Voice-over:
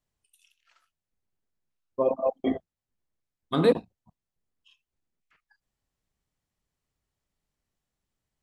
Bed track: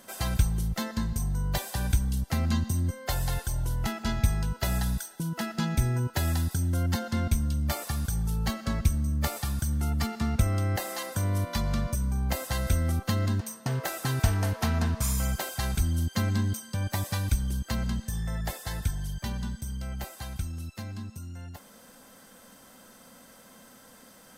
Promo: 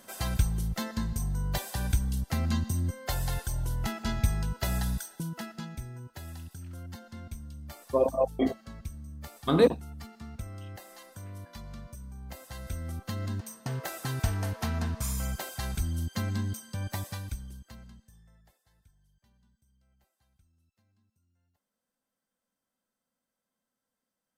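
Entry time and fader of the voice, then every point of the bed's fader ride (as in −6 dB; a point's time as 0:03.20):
5.95 s, 0.0 dB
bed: 0:05.17 −2 dB
0:05.86 −15.5 dB
0:12.18 −15.5 dB
0:13.57 −4.5 dB
0:16.96 −4.5 dB
0:18.66 −34.5 dB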